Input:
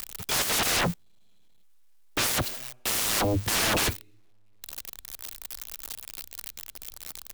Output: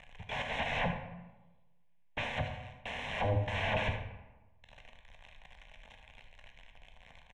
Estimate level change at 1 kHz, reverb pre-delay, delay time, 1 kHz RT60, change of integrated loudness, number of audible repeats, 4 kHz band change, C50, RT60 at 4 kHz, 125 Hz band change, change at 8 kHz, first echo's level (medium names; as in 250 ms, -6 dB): -5.5 dB, 12 ms, 75 ms, 1.1 s, -9.0 dB, 1, -13.5 dB, 6.0 dB, 0.65 s, -2.5 dB, -33.0 dB, -11.0 dB